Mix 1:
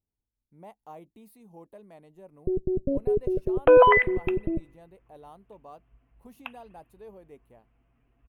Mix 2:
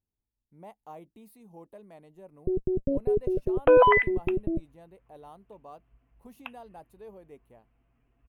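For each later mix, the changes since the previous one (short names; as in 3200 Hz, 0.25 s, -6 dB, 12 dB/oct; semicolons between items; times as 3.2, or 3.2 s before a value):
reverb: off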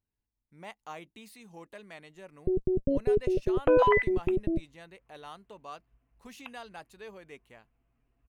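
speech: add band shelf 3200 Hz +15.5 dB 3 oct; second sound -5.0 dB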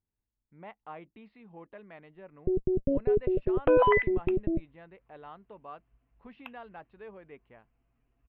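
speech: add Gaussian blur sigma 3.6 samples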